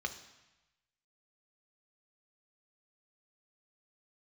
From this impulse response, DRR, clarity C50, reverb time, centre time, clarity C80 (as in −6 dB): 5.5 dB, 11.5 dB, 1.0 s, 11 ms, 14.0 dB